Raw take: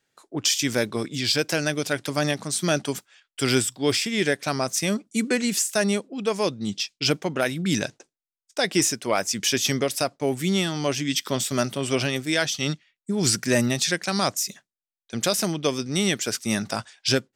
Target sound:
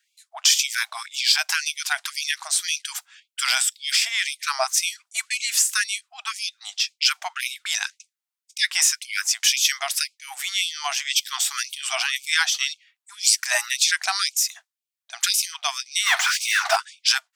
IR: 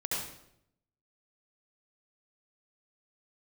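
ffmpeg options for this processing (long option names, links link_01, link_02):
-filter_complex "[0:a]asplit=3[link_01][link_02][link_03];[link_01]afade=type=out:start_time=16.05:duration=0.02[link_04];[link_02]asplit=2[link_05][link_06];[link_06]highpass=frequency=720:poles=1,volume=35dB,asoftclip=type=tanh:threshold=-9.5dB[link_07];[link_05][link_07]amix=inputs=2:normalize=0,lowpass=frequency=1300:poles=1,volume=-6dB,afade=type=in:start_time=16.05:duration=0.02,afade=type=out:start_time=16.75:duration=0.02[link_08];[link_03]afade=type=in:start_time=16.75:duration=0.02[link_09];[link_04][link_08][link_09]amix=inputs=3:normalize=0,afftfilt=real='re*gte(b*sr/1024,610*pow(2200/610,0.5+0.5*sin(2*PI*1.9*pts/sr)))':imag='im*gte(b*sr/1024,610*pow(2200/610,0.5+0.5*sin(2*PI*1.9*pts/sr)))':win_size=1024:overlap=0.75,volume=5dB"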